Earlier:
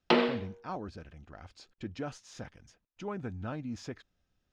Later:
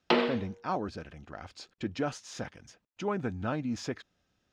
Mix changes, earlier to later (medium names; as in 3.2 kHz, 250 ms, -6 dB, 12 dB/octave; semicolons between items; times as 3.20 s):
speech +7.0 dB; master: add high-pass 150 Hz 6 dB/octave